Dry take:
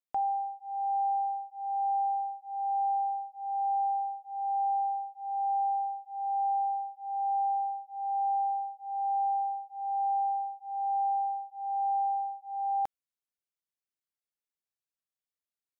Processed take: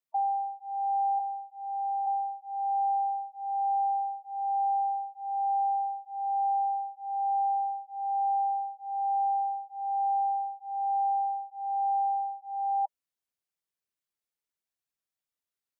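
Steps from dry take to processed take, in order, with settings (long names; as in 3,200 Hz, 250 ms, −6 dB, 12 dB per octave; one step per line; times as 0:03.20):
0:01.19–0:02.07: high-pass filter 820 Hz
gate on every frequency bin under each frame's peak −15 dB strong
level +1.5 dB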